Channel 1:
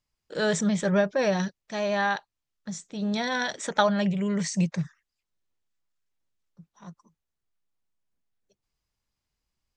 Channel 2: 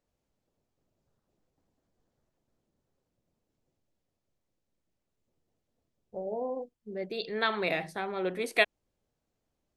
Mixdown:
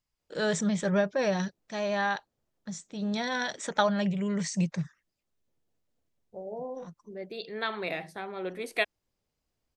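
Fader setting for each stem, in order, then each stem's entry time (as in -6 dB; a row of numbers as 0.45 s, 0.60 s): -3.0 dB, -3.5 dB; 0.00 s, 0.20 s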